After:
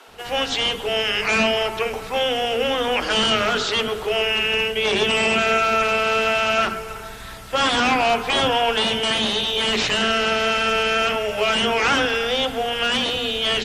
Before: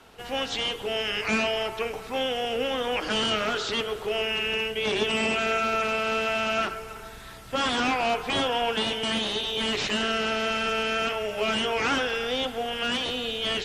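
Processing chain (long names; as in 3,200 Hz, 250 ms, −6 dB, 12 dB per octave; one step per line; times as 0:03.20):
multiband delay without the direct sound highs, lows 70 ms, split 300 Hz
level +7 dB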